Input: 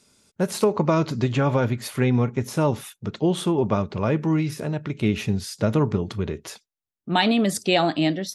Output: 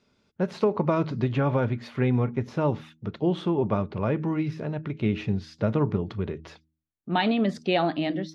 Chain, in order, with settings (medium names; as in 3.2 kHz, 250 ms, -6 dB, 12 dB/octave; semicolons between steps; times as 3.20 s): distance through air 230 m; de-hum 79.1 Hz, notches 4; trim -2.5 dB